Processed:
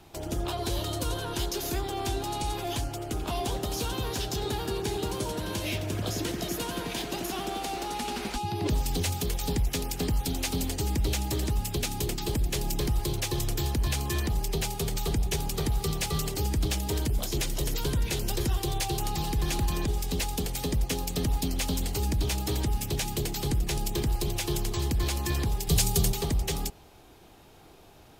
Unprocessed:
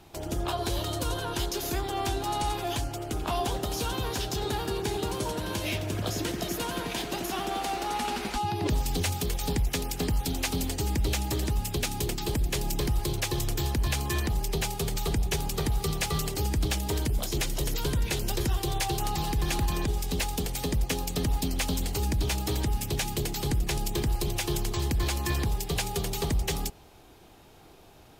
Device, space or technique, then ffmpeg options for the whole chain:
one-band saturation: -filter_complex "[0:a]asettb=1/sr,asplit=3[s0][s1][s2];[s0]atrim=end=25.674[s3];[s1]atrim=start=25.67:end=26.12,asetpts=PTS-STARTPTS,afade=t=in:d=0.004:c=qsin,afade=t=out:st=0.446:d=0.004:c=qsin,bass=f=250:g=8,treble=f=4000:g=9[s4];[s2]atrim=start=26.116[s5];[s3][s4]acrossfade=d=0.004:c1=hsin:c2=qsin[s6];[s6][s5]acrossfade=d=0.004:c1=qsin:c2=hsin,acrossover=split=590|2600[s7][s8][s9];[s8]asoftclip=type=tanh:threshold=0.0158[s10];[s7][s10][s9]amix=inputs=3:normalize=0"

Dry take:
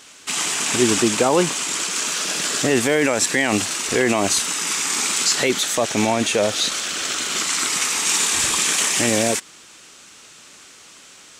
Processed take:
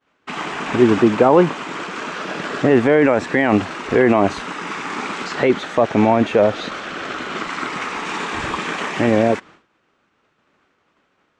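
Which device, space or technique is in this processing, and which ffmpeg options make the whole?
hearing-loss simulation: -af "lowpass=1500,agate=range=0.0224:threshold=0.00794:ratio=3:detection=peak,volume=1.88"

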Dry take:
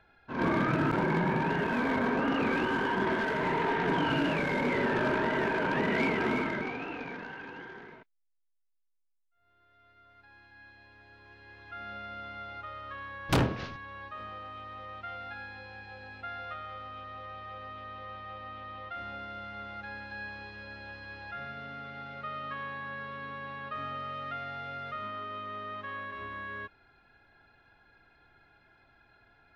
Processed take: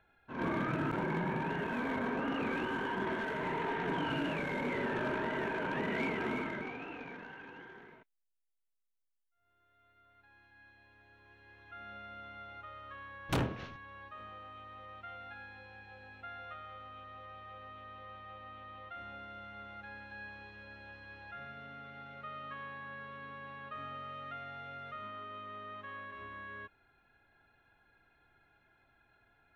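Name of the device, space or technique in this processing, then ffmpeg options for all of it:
exciter from parts: -filter_complex "[0:a]asplit=2[s0][s1];[s1]highpass=3600,asoftclip=type=tanh:threshold=0.01,highpass=f=3100:w=0.5412,highpass=f=3100:w=1.3066,volume=0.422[s2];[s0][s2]amix=inputs=2:normalize=0,bandreject=f=4900:w=14,volume=0.473"

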